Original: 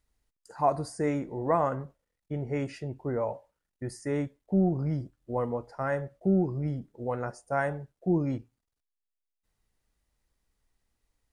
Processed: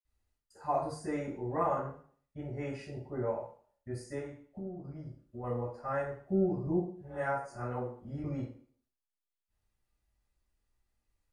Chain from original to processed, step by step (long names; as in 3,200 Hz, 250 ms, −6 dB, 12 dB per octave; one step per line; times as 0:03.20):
0:04.13–0:05.39: downward compressor 6 to 1, threshold −35 dBFS, peak gain reduction 14 dB
0:06.62–0:08.19: reverse
convolution reverb RT60 0.50 s, pre-delay 46 ms, DRR −60 dB